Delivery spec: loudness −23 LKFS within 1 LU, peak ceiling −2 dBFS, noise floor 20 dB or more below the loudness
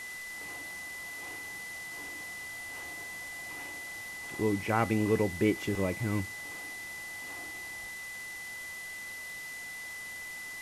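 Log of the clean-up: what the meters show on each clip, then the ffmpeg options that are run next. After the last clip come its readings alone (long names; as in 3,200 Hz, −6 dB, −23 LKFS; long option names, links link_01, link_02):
interfering tone 2,000 Hz; level of the tone −40 dBFS; background noise floor −42 dBFS; target noise floor −56 dBFS; integrated loudness −35.5 LKFS; sample peak −12.5 dBFS; target loudness −23.0 LKFS
→ -af "bandreject=frequency=2000:width=30"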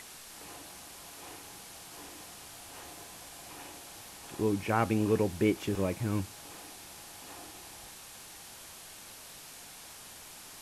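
interfering tone none found; background noise floor −49 dBFS; target noise floor −57 dBFS
→ -af "afftdn=noise_reduction=8:noise_floor=-49"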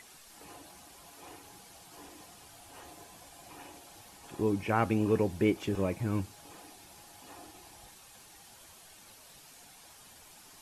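background noise floor −55 dBFS; integrated loudness −31.0 LKFS; sample peak −12.5 dBFS; target loudness −23.0 LKFS
→ -af "volume=8dB"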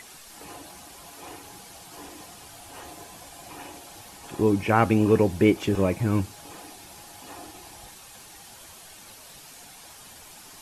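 integrated loudness −23.0 LKFS; sample peak −4.5 dBFS; background noise floor −47 dBFS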